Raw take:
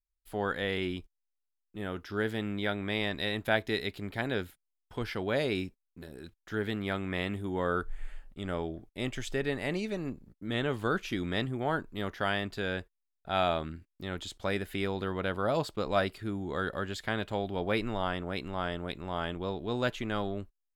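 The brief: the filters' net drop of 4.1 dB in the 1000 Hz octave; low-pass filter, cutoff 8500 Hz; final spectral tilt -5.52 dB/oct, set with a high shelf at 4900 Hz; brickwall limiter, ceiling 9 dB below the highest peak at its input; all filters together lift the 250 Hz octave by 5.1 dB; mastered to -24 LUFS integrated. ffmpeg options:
-af "lowpass=8.5k,equalizer=f=250:t=o:g=7,equalizer=f=1k:t=o:g=-6.5,highshelf=f=4.9k:g=-5,volume=10.5dB,alimiter=limit=-13dB:level=0:latency=1"

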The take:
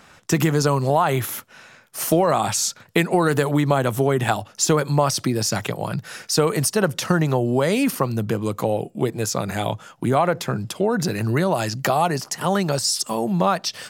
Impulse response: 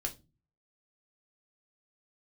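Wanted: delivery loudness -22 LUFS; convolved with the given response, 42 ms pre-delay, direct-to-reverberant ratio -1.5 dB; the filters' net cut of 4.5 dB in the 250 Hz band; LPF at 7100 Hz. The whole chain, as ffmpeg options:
-filter_complex "[0:a]lowpass=7.1k,equalizer=f=250:t=o:g=-7,asplit=2[a][b];[1:a]atrim=start_sample=2205,adelay=42[c];[b][c]afir=irnorm=-1:irlink=0,volume=0.5dB[d];[a][d]amix=inputs=2:normalize=0,volume=-3dB"

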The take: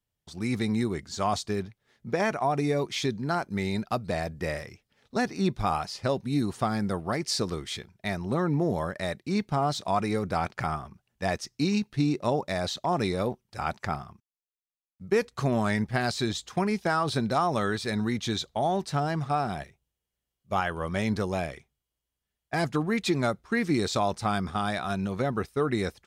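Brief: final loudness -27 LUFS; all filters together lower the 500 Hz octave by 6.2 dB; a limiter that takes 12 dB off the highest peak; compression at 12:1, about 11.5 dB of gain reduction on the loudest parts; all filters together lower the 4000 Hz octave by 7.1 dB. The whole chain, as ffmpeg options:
-af "equalizer=f=500:t=o:g=-8.5,equalizer=f=4k:t=o:g=-8.5,acompressor=threshold=-35dB:ratio=12,volume=16.5dB,alimiter=limit=-17dB:level=0:latency=1"

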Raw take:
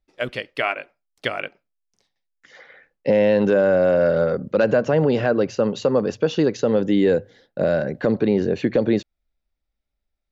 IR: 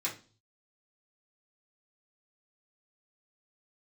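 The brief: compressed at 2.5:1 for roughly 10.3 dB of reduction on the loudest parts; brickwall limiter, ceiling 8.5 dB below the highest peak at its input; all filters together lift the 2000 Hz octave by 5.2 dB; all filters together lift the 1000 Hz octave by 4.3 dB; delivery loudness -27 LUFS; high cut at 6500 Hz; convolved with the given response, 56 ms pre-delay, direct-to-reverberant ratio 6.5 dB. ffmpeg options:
-filter_complex "[0:a]lowpass=6.5k,equalizer=f=1k:t=o:g=5,equalizer=f=2k:t=o:g=5,acompressor=threshold=-28dB:ratio=2.5,alimiter=limit=-19dB:level=0:latency=1,asplit=2[a][b];[1:a]atrim=start_sample=2205,adelay=56[c];[b][c]afir=irnorm=-1:irlink=0,volume=-10.5dB[d];[a][d]amix=inputs=2:normalize=0,volume=3dB"

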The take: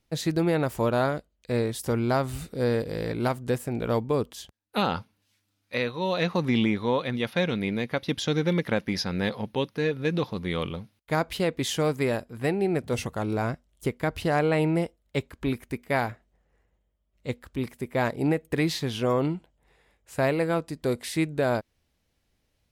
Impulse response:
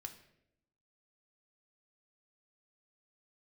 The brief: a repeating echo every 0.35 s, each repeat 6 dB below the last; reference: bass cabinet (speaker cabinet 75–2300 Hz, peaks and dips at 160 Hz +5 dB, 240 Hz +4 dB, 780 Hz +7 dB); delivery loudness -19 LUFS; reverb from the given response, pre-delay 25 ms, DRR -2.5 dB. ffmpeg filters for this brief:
-filter_complex "[0:a]aecho=1:1:350|700|1050|1400|1750|2100:0.501|0.251|0.125|0.0626|0.0313|0.0157,asplit=2[a][b];[1:a]atrim=start_sample=2205,adelay=25[c];[b][c]afir=irnorm=-1:irlink=0,volume=7dB[d];[a][d]amix=inputs=2:normalize=0,highpass=f=75:w=0.5412,highpass=f=75:w=1.3066,equalizer=f=160:t=q:w=4:g=5,equalizer=f=240:t=q:w=4:g=4,equalizer=f=780:t=q:w=4:g=7,lowpass=f=2.3k:w=0.5412,lowpass=f=2.3k:w=1.3066,volume=1.5dB"

